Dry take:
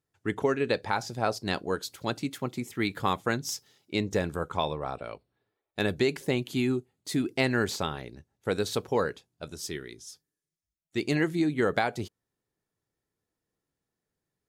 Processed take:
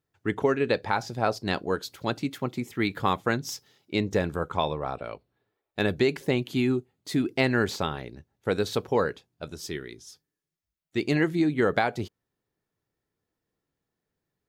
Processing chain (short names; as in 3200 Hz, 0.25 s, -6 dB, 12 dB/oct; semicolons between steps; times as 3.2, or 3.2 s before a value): bell 9100 Hz -7 dB 1.4 oct; gain +2.5 dB